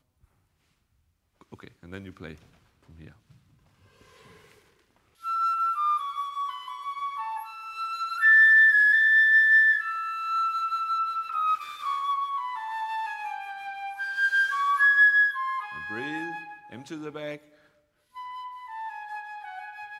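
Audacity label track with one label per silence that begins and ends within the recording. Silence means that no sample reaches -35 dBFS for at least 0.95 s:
3.070000	5.250000	silence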